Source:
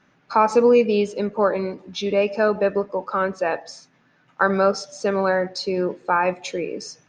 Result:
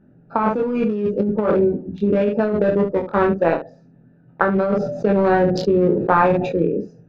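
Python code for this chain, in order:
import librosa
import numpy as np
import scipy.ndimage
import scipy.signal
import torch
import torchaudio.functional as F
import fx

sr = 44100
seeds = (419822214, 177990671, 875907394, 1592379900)

y = fx.wiener(x, sr, points=41)
y = fx.riaa(y, sr, side='playback')
y = fx.room_early_taps(y, sr, ms=(24, 71), db=(-3.5, -10.5))
y = fx.over_compress(y, sr, threshold_db=-18.0, ratio=-1.0)
y = fx.low_shelf(y, sr, hz=130.0, db=-8.0)
y = fx.sustainer(y, sr, db_per_s=52.0, at=(4.57, 6.58))
y = y * librosa.db_to_amplitude(2.5)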